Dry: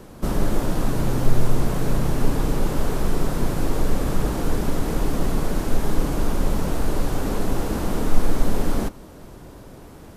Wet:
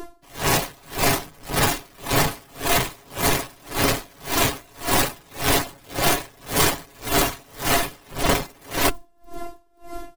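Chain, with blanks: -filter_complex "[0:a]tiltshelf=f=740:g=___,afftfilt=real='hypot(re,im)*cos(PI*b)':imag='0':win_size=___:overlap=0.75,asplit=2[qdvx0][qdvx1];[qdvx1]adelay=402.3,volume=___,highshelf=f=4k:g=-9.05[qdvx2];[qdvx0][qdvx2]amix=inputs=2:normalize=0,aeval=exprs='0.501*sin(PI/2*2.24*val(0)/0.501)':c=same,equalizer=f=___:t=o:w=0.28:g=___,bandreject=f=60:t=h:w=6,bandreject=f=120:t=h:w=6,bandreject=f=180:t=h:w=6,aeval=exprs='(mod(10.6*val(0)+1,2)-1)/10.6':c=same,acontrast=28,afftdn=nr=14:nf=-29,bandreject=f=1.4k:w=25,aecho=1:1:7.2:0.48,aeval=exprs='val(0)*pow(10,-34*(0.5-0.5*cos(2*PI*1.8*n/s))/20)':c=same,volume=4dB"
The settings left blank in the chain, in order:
-5.5, 512, -29dB, 170, 12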